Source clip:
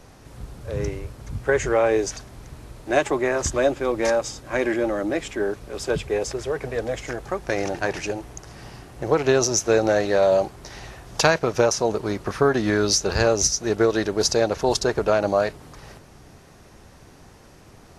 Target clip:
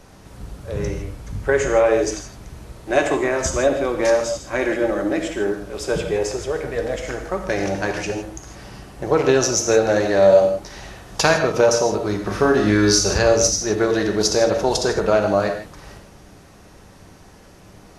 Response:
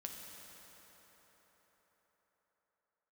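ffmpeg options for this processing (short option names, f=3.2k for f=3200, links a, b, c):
-filter_complex "[0:a]asettb=1/sr,asplit=3[a][b][c];[a]atrim=end=12.214[d];[b]atrim=start=12.21:end=13.18,asetpts=PTS-STARTPTS,afade=t=in:d=0.004:c=qsin,afade=t=out:st=0.966:d=0.004:c=qsin,asplit=2[e][f];[f]adelay=39,volume=-4.5dB[g];[e][g]amix=inputs=2:normalize=0,atrim=end_sample=42777[h];[c]atrim=start=13.176[i];[d][h]acrossfade=d=0.004:c1=hsin:c2=qsin[j];[j][i]acrossfade=d=0.004:c1=qsin:c2=hsin[k];[1:a]atrim=start_sample=2205,afade=t=out:st=0.22:d=0.01,atrim=end_sample=10143[l];[k][l]afir=irnorm=-1:irlink=0,volume=6.5dB"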